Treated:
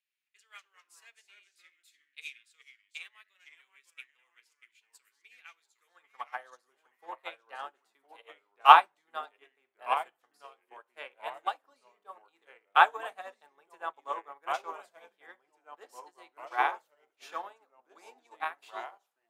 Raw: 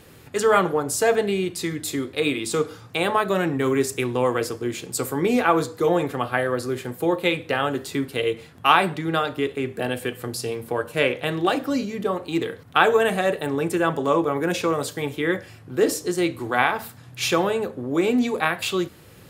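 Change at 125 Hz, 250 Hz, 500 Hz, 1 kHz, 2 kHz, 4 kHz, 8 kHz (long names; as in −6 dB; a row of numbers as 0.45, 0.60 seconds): below −40 dB, below −35 dB, −22.5 dB, −4.0 dB, −10.0 dB, −11.5 dB, below −25 dB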